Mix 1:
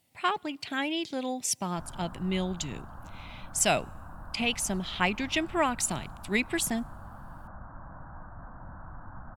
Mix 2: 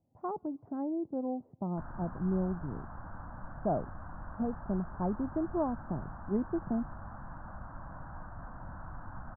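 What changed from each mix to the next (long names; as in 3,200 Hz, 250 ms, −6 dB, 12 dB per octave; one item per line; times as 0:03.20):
speech: add Bessel low-pass filter 550 Hz, order 8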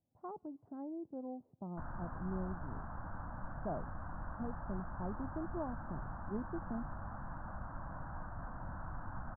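speech −9.5 dB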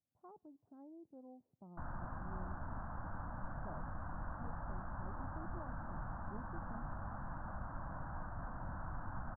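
speech −11.5 dB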